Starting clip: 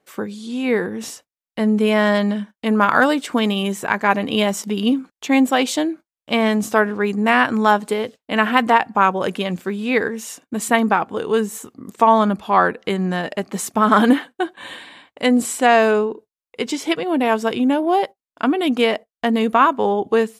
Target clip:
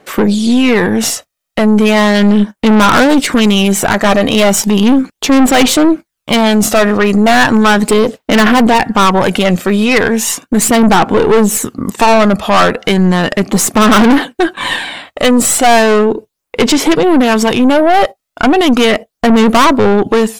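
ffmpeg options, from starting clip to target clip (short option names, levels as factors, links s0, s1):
-af "aphaser=in_gain=1:out_gain=1:delay=1.6:decay=0.44:speed=0.36:type=sinusoidal,aeval=exprs='(tanh(8.91*val(0)+0.45)-tanh(0.45))/8.91':c=same,alimiter=level_in=10:limit=0.891:release=50:level=0:latency=1,volume=0.891"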